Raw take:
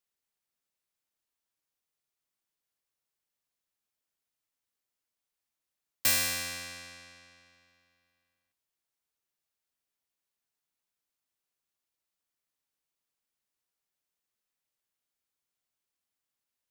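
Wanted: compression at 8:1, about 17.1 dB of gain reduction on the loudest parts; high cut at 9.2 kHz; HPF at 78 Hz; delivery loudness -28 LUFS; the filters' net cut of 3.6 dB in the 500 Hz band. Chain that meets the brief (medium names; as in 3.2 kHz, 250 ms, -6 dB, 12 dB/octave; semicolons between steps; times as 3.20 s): high-pass 78 Hz; low-pass 9.2 kHz; peaking EQ 500 Hz -4 dB; compression 8:1, threshold -43 dBFS; trim +18 dB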